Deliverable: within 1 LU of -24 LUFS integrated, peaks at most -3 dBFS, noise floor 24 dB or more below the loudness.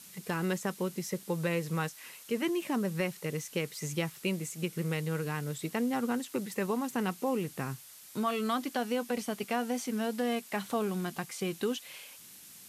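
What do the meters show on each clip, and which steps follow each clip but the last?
noise floor -52 dBFS; noise floor target -58 dBFS; loudness -33.5 LUFS; peak -18.5 dBFS; loudness target -24.0 LUFS
-> denoiser 6 dB, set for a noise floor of -52 dBFS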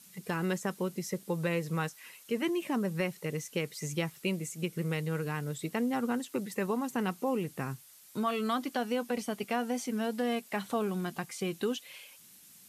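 noise floor -56 dBFS; noise floor target -58 dBFS
-> denoiser 6 dB, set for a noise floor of -56 dBFS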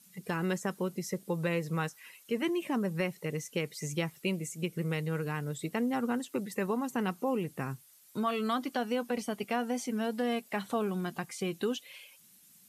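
noise floor -60 dBFS; loudness -34.0 LUFS; peak -18.5 dBFS; loudness target -24.0 LUFS
-> gain +10 dB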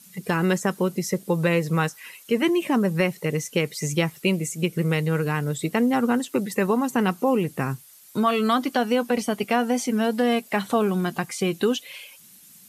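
loudness -24.0 LUFS; peak -8.5 dBFS; noise floor -50 dBFS

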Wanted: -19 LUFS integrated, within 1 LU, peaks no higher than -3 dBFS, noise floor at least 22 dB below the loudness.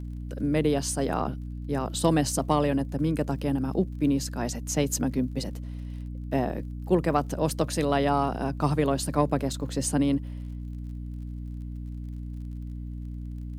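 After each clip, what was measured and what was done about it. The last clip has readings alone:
ticks 42/s; hum 60 Hz; harmonics up to 300 Hz; hum level -33 dBFS; loudness -28.5 LUFS; peak -9.0 dBFS; loudness target -19.0 LUFS
-> de-click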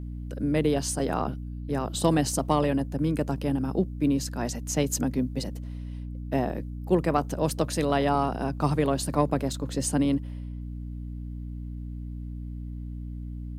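ticks 0.15/s; hum 60 Hz; harmonics up to 300 Hz; hum level -33 dBFS
-> notches 60/120/180/240/300 Hz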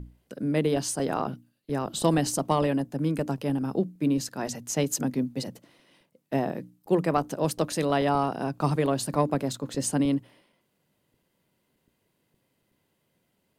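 hum none; loudness -27.5 LUFS; peak -9.5 dBFS; loudness target -19.0 LUFS
-> gain +8.5 dB; limiter -3 dBFS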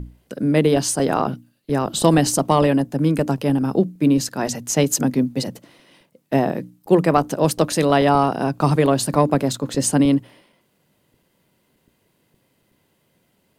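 loudness -19.0 LUFS; peak -3.0 dBFS; noise floor -66 dBFS

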